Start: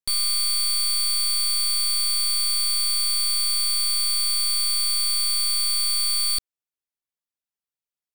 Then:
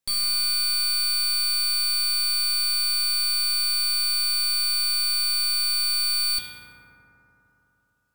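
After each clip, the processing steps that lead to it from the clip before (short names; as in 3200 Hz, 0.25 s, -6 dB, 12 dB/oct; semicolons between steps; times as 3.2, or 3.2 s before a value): limiter -33 dBFS, peak gain reduction 11 dB; reverb RT60 3.6 s, pre-delay 3 ms, DRR -4.5 dB; gain +7.5 dB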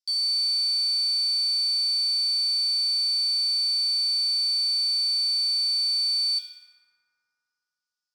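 band-pass 5100 Hz, Q 5.7; gain +5.5 dB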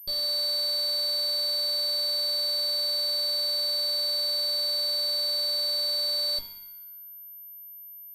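minimum comb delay 1.5 ms; notches 50/100/150 Hz; pulse-width modulation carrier 13000 Hz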